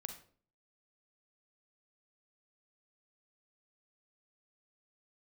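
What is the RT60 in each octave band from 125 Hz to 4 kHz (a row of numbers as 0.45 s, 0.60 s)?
0.60 s, 0.60 s, 0.50 s, 0.40 s, 0.35 s, 0.35 s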